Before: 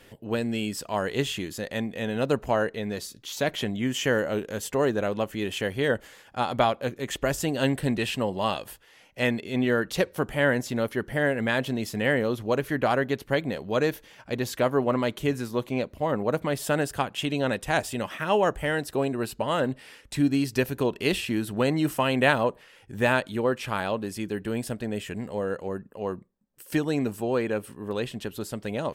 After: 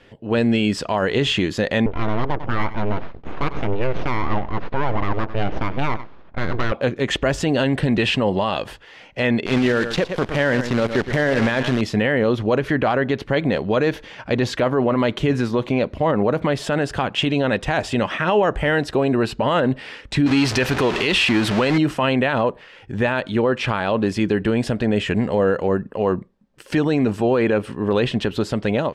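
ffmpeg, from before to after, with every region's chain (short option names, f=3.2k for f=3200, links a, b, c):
-filter_complex "[0:a]asettb=1/sr,asplit=3[a][b][c];[a]atrim=end=1.864[d];[b]atrim=start=1.86:end=6.72,asetpts=PTS-STARTPTS,afade=t=in:d=0.004:c=qsin,afade=t=out:st=4.856:d=0.004:c=qsin,aeval=exprs='abs(val(0))':c=same,adynamicsmooth=sensitivity=2:basefreq=1.3k,aecho=1:1:96:0.0944,atrim=end_sample=214326[e];[c]atrim=start=6.716[f];[d][e]acrossfade=d=0.004:c1=hsin:c2=qsin[g];[g][f]acrossfade=d=0.004:c1=qsin:c2=hsin,asettb=1/sr,asplit=3[h][i][j];[h]atrim=end=9.464[k];[i]atrim=start=9.46:end=11.81,asetpts=PTS-STARTPTS,afade=t=in:d=0.004:c=qsin,afade=t=out:st=2.346:d=0.004:c=qsin,acrusher=bits=6:dc=4:mix=0:aa=0.000001,aecho=1:1:114:0.188,atrim=end_sample=103635[l];[j]atrim=start=11.806[m];[k][l]acrossfade=d=0.004:c1=hsin:c2=qsin[n];[n][m]acrossfade=d=0.004:c1=qsin:c2=hsin,asettb=1/sr,asplit=3[o][p][q];[o]atrim=end=20.264[r];[p]atrim=start=20.26:end=21.78,asetpts=PTS-STARTPTS,afade=t=in:d=0.004:c=qsin,afade=t=out:st=1.516:d=0.004:c=qsin,aeval=exprs='val(0)+0.5*0.0355*sgn(val(0))':c=same,tiltshelf=f=680:g=-4.5[s];[q]atrim=start=21.776[t];[r][s]acrossfade=d=0.004:c1=hsin:c2=qsin[u];[u][t]acrossfade=d=0.004:c1=qsin:c2=hsin,lowpass=4k,dynaudnorm=f=140:g=5:m=11.5dB,alimiter=level_in=11.5dB:limit=-1dB:release=50:level=0:latency=1,volume=-8.5dB"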